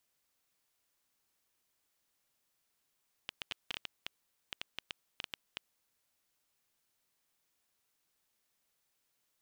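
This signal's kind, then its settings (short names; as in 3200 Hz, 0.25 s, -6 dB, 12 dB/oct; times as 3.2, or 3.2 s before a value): random clicks 6.2/s -20.5 dBFS 2.96 s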